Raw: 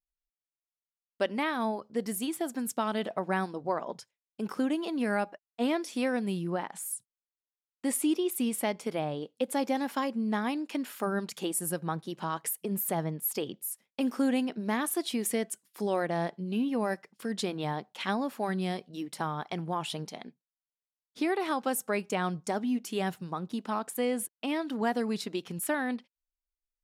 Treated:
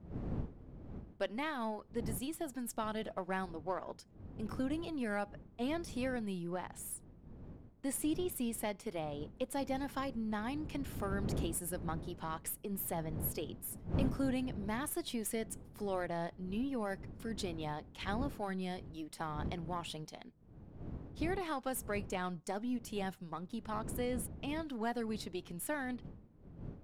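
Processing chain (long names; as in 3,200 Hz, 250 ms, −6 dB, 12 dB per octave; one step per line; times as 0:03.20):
gain on one half-wave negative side −3 dB
wind on the microphone 200 Hz −40 dBFS
level −6.5 dB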